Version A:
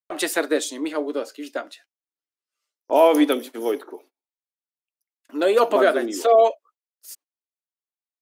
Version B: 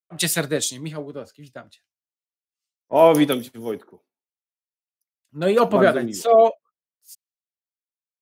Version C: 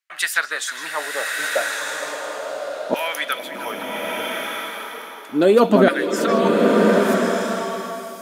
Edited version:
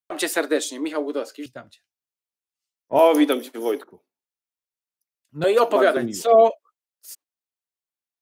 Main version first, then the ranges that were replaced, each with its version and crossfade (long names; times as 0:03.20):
A
0:01.46–0:02.99: punch in from B
0:03.84–0:05.44: punch in from B
0:05.97–0:06.50: punch in from B
not used: C